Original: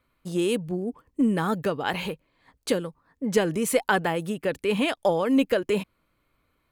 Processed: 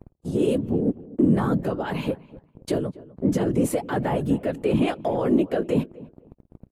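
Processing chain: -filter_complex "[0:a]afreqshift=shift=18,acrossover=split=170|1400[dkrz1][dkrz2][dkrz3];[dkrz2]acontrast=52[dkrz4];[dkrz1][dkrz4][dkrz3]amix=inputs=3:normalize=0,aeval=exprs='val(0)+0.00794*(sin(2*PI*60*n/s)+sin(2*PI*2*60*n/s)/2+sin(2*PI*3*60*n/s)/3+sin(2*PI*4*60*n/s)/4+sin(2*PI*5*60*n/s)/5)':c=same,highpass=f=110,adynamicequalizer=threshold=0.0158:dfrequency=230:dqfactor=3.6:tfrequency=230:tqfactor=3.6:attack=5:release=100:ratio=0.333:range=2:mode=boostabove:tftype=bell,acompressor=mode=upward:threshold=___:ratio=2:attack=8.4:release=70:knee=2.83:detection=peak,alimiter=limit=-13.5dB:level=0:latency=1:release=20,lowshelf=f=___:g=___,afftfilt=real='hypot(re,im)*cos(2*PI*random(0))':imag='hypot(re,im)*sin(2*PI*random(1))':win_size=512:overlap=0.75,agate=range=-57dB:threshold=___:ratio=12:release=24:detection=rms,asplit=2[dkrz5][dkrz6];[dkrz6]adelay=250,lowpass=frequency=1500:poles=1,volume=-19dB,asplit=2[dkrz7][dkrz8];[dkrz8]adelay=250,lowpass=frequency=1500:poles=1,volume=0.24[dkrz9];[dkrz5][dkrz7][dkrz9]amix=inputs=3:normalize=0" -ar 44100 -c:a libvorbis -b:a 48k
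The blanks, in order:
-30dB, 440, 8, -37dB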